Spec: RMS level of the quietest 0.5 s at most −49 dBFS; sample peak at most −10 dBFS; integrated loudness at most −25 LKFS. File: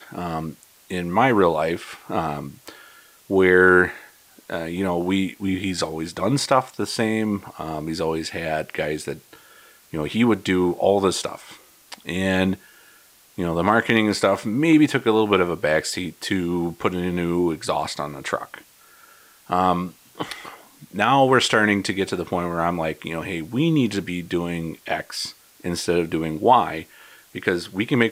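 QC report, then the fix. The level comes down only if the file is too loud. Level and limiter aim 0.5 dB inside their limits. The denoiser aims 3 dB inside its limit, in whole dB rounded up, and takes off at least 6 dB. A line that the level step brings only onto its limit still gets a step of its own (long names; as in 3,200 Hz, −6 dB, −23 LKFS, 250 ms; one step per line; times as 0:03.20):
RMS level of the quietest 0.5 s −53 dBFS: in spec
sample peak −3.0 dBFS: out of spec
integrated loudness −22.0 LKFS: out of spec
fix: level −3.5 dB
brickwall limiter −10.5 dBFS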